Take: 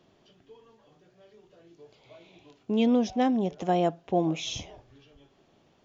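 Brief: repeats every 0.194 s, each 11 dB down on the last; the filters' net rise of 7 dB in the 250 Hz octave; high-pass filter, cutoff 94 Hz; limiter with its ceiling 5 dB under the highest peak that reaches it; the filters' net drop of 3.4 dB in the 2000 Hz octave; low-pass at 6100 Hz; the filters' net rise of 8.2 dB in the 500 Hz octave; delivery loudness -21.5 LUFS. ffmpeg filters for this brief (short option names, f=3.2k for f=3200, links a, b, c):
-af "highpass=94,lowpass=6.1k,equalizer=f=250:t=o:g=6,equalizer=f=500:t=o:g=8.5,equalizer=f=2k:t=o:g=-5,alimiter=limit=-11dB:level=0:latency=1,aecho=1:1:194|388|582:0.282|0.0789|0.0221"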